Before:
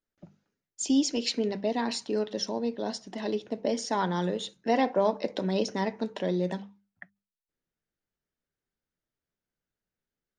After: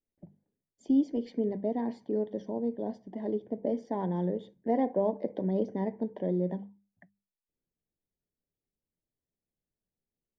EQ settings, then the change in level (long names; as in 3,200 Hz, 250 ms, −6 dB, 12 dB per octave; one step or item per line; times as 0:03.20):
moving average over 33 samples
high-frequency loss of the air 64 metres
0.0 dB